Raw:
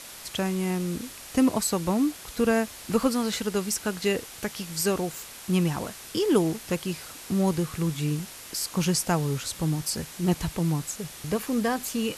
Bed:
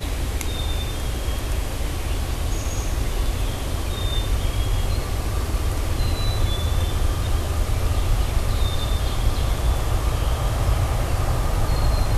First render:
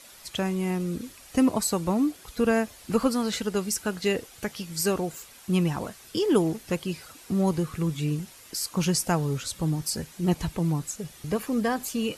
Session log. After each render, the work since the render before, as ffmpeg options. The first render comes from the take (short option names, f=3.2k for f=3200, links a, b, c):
-af "afftdn=nr=9:nf=-43"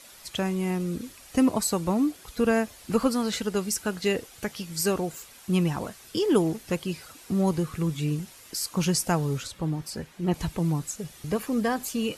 -filter_complex "[0:a]asettb=1/sr,asplit=3[a][b][c];[a]atrim=end=9.474[d];[b]atrim=start=9.47:end=10.34,asetpts=PTS-STARTPTS,afade=t=in:d=0.004:c=qsin,afade=t=out:st=0.866:d=0.004:c=qsin,bass=f=250:g=-3,treble=f=4k:g=-10[e];[c]atrim=start=10.336[f];[d][e]acrossfade=d=0.004:c1=hsin:c2=qsin[g];[g][f]acrossfade=d=0.004:c1=qsin:c2=hsin"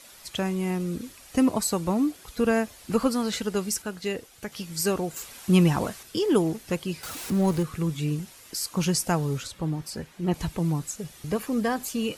-filter_complex "[0:a]asettb=1/sr,asplit=3[a][b][c];[a]atrim=end=5.164[d];[b]atrim=start=5.16:end=6.03,asetpts=PTS-STARTPTS,afade=t=in:d=0.004:c=qsin,afade=t=out:st=0.866:d=0.004:c=qsin,acontrast=33[e];[c]atrim=start=6.026[f];[d][e]acrossfade=d=0.004:c1=hsin:c2=qsin[g];[g][f]acrossfade=d=0.004:c1=qsin:c2=hsin,asettb=1/sr,asplit=3[h][i][j];[h]atrim=end=7.034[k];[i]atrim=start=7.03:end=7.63,asetpts=PTS-STARTPTS,afade=t=in:d=0.004:c=qsin,afade=t=out:st=0.596:d=0.004:c=qsin,aeval=exprs='val(0)+0.5*0.0224*sgn(val(0))':c=same[l];[j]atrim=start=7.626[m];[k][l]acrossfade=d=0.004:c1=hsin:c2=qsin[n];[n][m]acrossfade=d=0.004:c1=qsin:c2=hsin,asplit=3[o][p][q];[o]atrim=end=3.822[r];[p]atrim=start=3.818:end=4.522,asetpts=PTS-STARTPTS,volume=-4.5dB[s];[q]atrim=start=4.518[t];[r][s]acrossfade=d=0.004:c1=hsin:c2=hsin[u];[u][t]acrossfade=d=0.004:c1=hsin:c2=hsin"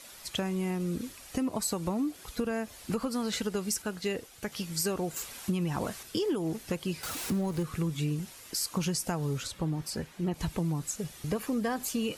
-af "alimiter=limit=-16dB:level=0:latency=1:release=176,acompressor=threshold=-27dB:ratio=6"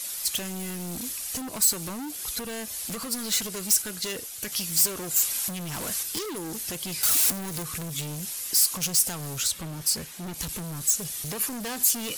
-af "volume=33.5dB,asoftclip=hard,volume=-33.5dB,crystalizer=i=5.5:c=0"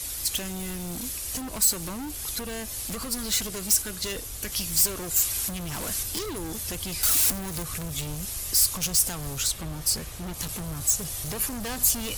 -filter_complex "[1:a]volume=-20dB[a];[0:a][a]amix=inputs=2:normalize=0"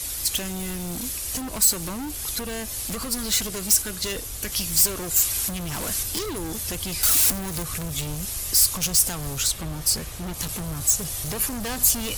-af "volume=3dB"